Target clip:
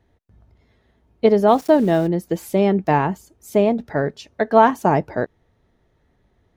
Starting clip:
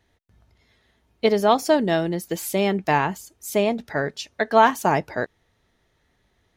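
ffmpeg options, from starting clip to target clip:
-filter_complex "[0:a]tiltshelf=f=1.4k:g=7,asplit=3[a][b][c];[a]afade=t=out:st=1.47:d=0.02[d];[b]aeval=exprs='val(0)*gte(abs(val(0)),0.0211)':c=same,afade=t=in:st=1.47:d=0.02,afade=t=out:st=2.06:d=0.02[e];[c]afade=t=in:st=2.06:d=0.02[f];[d][e][f]amix=inputs=3:normalize=0,volume=-1dB"

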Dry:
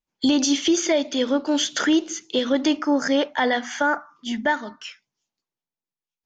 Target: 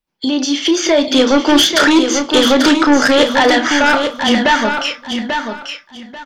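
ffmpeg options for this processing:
-filter_complex "[0:a]equalizer=f=6.6k:t=o:w=0.29:g=-9.5,acrossover=split=220[a][b];[a]acompressor=threshold=-42dB:ratio=6[c];[c][b]amix=inputs=2:normalize=0,alimiter=limit=-16dB:level=0:latency=1:release=139,dynaudnorm=f=210:g=9:m=12dB,aeval=exprs='0.596*sin(PI/2*1.78*val(0)/0.596)':c=same,asplit=2[d][e];[e]adelay=31,volume=-10dB[f];[d][f]amix=inputs=2:normalize=0,asplit=2[g][h];[h]aecho=0:1:840|1680|2520:0.473|0.104|0.0229[i];[g][i]amix=inputs=2:normalize=0,volume=-2.5dB"

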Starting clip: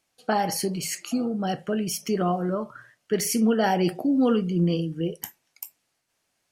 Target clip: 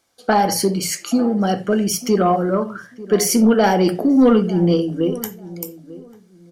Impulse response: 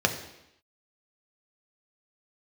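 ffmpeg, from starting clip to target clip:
-filter_complex "[0:a]asplit=2[a][b];[1:a]atrim=start_sample=2205,atrim=end_sample=4410[c];[b][c]afir=irnorm=-1:irlink=0,volume=-16dB[d];[a][d]amix=inputs=2:normalize=0,asoftclip=type=tanh:threshold=-11dB,asplit=2[e][f];[f]adelay=894,lowpass=f=1k:p=1,volume=-17dB,asplit=2[g][h];[h]adelay=894,lowpass=f=1k:p=1,volume=0.22[i];[g][i]amix=inputs=2:normalize=0[j];[e][j]amix=inputs=2:normalize=0,volume=6dB"

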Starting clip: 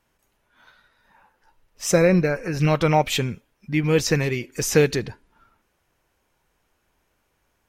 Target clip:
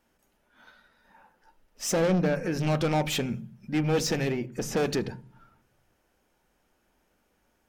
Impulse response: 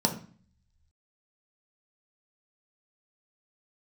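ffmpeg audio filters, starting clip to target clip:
-filter_complex "[0:a]asettb=1/sr,asplit=3[a][b][c];[a]atrim=end=4.324[d];[b]atrim=start=4.32:end=4.77,asetpts=PTS-STARTPTS,afade=t=in:d=0.004:c=qsin,afade=t=out:st=0.446:d=0.004:c=qsin,highshelf=f=2.2k:g=-11[e];[c]atrim=start=4.766[f];[d][e]acrossfade=d=0.004:c1=hsin:c2=qsin[g];[g][f]acrossfade=d=0.004:c1=qsin:c2=hsin,asoftclip=type=tanh:threshold=-22dB,asplit=2[h][i];[1:a]atrim=start_sample=2205,lowpass=2.8k[j];[i][j]afir=irnorm=-1:irlink=0,volume=-19dB[k];[h][k]amix=inputs=2:normalize=0,volume=-2dB"

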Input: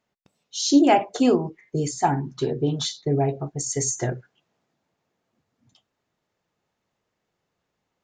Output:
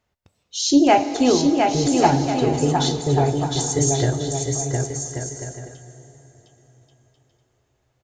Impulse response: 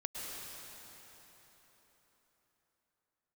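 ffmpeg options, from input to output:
-filter_complex "[0:a]lowshelf=f=120:t=q:w=1.5:g=10.5,aecho=1:1:710|1136|1392|1545|1637:0.631|0.398|0.251|0.158|0.1,asplit=2[a][b];[1:a]atrim=start_sample=2205[c];[b][c]afir=irnorm=-1:irlink=0,volume=-10dB[d];[a][d]amix=inputs=2:normalize=0,volume=1dB"

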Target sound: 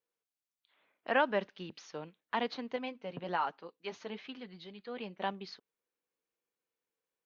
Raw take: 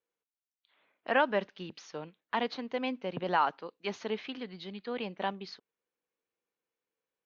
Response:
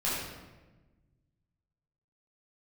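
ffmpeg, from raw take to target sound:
-filter_complex "[0:a]asettb=1/sr,asplit=3[a][b][c];[a]atrim=end=2.764[d];[b]atrim=start=2.76:end=5.22,asetpts=PTS-STARTPTS,afade=t=in:d=0.004:c=qsin,afade=t=out:st=2.456:d=0.004:c=qsin,flanger=delay=4.5:depth=2.9:regen=-42:speed=1.3:shape=triangular[e];[c]atrim=start=5.216[f];[d][e]acrossfade=d=0.004:c1=hsin:c2=qsin[g];[g][f]acrossfade=d=0.004:c1=qsin:c2=hsin,volume=-2dB"

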